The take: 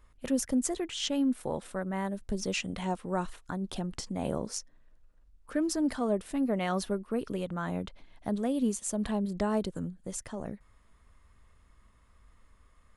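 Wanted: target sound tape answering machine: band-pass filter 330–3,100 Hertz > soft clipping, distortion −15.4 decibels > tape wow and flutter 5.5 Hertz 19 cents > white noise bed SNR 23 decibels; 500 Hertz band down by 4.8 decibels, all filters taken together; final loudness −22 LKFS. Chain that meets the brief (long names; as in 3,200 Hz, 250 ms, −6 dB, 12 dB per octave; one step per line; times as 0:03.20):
band-pass filter 330–3,100 Hz
parametric band 500 Hz −5 dB
soft clipping −29.5 dBFS
tape wow and flutter 5.5 Hz 19 cents
white noise bed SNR 23 dB
level +18.5 dB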